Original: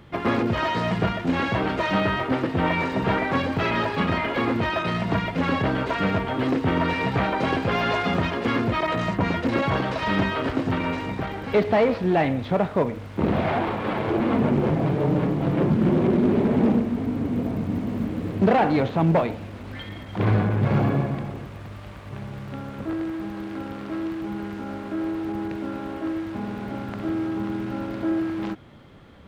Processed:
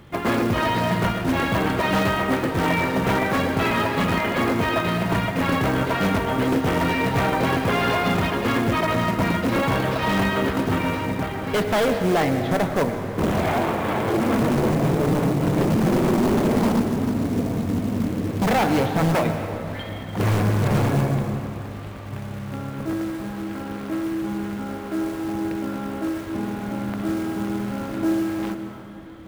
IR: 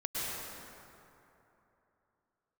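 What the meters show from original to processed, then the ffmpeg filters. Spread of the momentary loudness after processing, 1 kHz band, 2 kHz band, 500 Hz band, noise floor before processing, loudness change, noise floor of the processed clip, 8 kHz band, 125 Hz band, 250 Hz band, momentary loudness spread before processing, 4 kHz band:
9 LU, +2.0 dB, +2.5 dB, +1.5 dB, -38 dBFS, +1.5 dB, -33 dBFS, no reading, +1.5 dB, +1.5 dB, 12 LU, +3.5 dB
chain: -filter_complex "[0:a]acrusher=bits=5:mode=log:mix=0:aa=0.000001,aeval=exprs='0.15*(abs(mod(val(0)/0.15+3,4)-2)-1)':c=same,asplit=2[s0][s1];[1:a]atrim=start_sample=2205[s2];[s1][s2]afir=irnorm=-1:irlink=0,volume=0.299[s3];[s0][s3]amix=inputs=2:normalize=0"

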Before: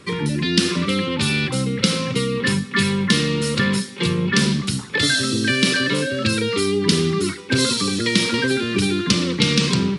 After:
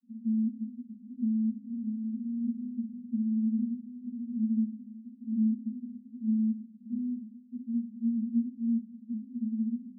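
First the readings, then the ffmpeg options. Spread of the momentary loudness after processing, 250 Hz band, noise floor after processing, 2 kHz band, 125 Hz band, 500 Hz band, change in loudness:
11 LU, -8.0 dB, -53 dBFS, under -40 dB, under -20 dB, under -40 dB, -13.0 dB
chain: -af "alimiter=limit=0.211:level=0:latency=1:release=133,asuperpass=centerf=230:order=12:qfactor=6.3,volume=1.33"

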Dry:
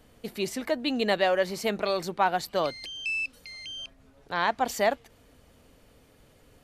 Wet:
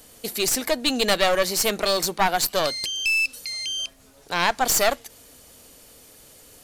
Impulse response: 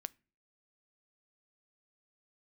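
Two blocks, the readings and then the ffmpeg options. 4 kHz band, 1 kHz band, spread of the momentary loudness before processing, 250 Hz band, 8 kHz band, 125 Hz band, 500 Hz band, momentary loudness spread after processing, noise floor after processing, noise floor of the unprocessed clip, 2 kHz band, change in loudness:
+10.5 dB, +3.5 dB, 13 LU, +2.0 dB, +17.5 dB, +3.5 dB, +3.0 dB, 9 LU, -52 dBFS, -59 dBFS, +6.0 dB, +6.0 dB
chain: -filter_complex "[0:a]bass=f=250:g=-6,treble=f=4000:g=15,aeval=exprs='clip(val(0),-1,0.0422)':c=same,asplit=2[s0][s1];[1:a]atrim=start_sample=2205[s2];[s1][s2]afir=irnorm=-1:irlink=0,volume=1.41[s3];[s0][s3]amix=inputs=2:normalize=0"

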